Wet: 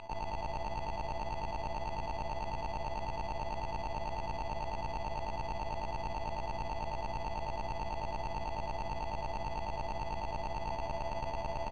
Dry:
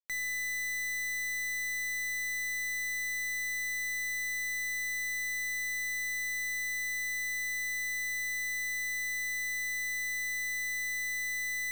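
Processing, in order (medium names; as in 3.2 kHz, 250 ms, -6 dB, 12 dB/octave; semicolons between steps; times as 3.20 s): high-pass 54 Hz 12 dB/octave; band-stop 5.7 kHz, Q 7.6; sample-and-hold 33×; treble shelf 8.6 kHz -4.5 dB; reverse echo 1010 ms -10 dB; formant shift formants +5 st; distance through air 170 m; frequency-shifting echo 157 ms, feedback 47%, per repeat -71 Hz, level -11 dB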